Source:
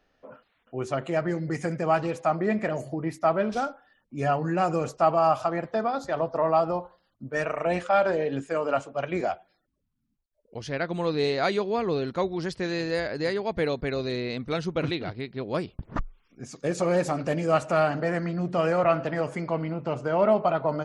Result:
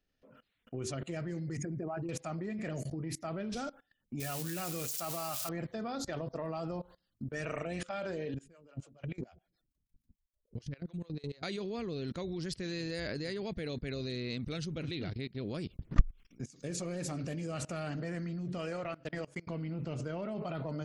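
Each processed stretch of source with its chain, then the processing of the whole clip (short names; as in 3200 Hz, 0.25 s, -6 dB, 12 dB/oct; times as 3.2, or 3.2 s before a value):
1.57–2.09 formant sharpening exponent 2 + bell 500 Hz -13.5 dB 0.22 oct
4.2–5.49 switching spikes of -26 dBFS + tilt shelf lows -4.5 dB, about 710 Hz
8.34–11.43 low shelf 170 Hz +10.5 dB + compressor 4:1, threshold -31 dBFS + harmonic tremolo 6.8 Hz, depth 100%, crossover 450 Hz
18.58–19.47 bell 180 Hz -6 dB 1.5 oct + transient shaper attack -1 dB, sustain -7 dB + upward expander, over -37 dBFS
whole clip: bell 880 Hz -14.5 dB 2.2 oct; transient shaper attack +6 dB, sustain +2 dB; level quantiser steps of 22 dB; gain +6.5 dB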